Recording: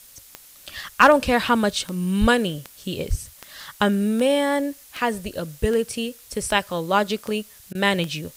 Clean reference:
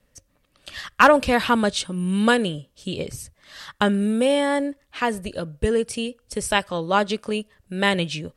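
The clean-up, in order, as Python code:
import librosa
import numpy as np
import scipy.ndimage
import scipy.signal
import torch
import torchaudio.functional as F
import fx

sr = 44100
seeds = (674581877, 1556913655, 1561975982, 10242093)

y = fx.fix_declick_ar(x, sr, threshold=10.0)
y = fx.fix_deplosive(y, sr, at_s=(2.2, 3.09))
y = fx.fix_interpolate(y, sr, at_s=(7.73,), length_ms=18.0)
y = fx.noise_reduce(y, sr, print_start_s=0.06, print_end_s=0.56, reduce_db=16.0)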